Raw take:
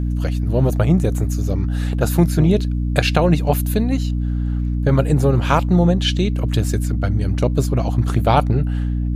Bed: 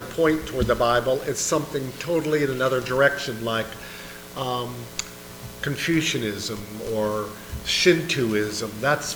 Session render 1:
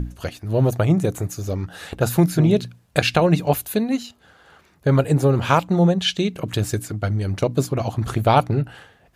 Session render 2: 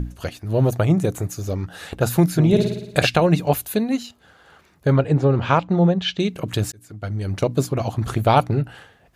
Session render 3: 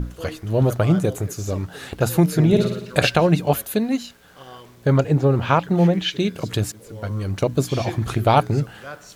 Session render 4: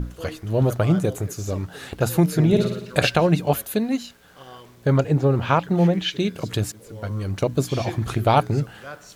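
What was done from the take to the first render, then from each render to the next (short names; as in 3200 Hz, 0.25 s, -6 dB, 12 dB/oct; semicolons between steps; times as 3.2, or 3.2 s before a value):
notches 60/120/180/240/300 Hz
2.47–3.07 flutter echo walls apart 9.7 m, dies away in 0.82 s; 4.92–6.2 air absorption 150 m; 6.72–7.38 fade in
add bed -15 dB
gain -1.5 dB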